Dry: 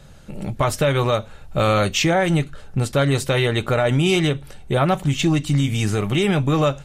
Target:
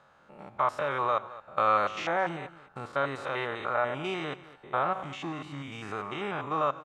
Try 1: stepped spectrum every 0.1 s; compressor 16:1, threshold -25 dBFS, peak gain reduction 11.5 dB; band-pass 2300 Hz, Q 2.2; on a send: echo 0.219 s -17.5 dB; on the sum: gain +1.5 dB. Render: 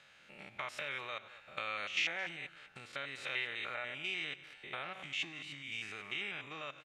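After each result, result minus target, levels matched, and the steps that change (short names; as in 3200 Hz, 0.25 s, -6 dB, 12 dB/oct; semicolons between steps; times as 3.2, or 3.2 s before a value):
compressor: peak gain reduction +11.5 dB; 1000 Hz band -9.5 dB
remove: compressor 16:1, threshold -25 dBFS, peak gain reduction 11.5 dB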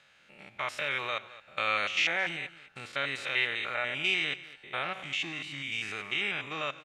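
1000 Hz band -8.5 dB
change: band-pass 1100 Hz, Q 2.2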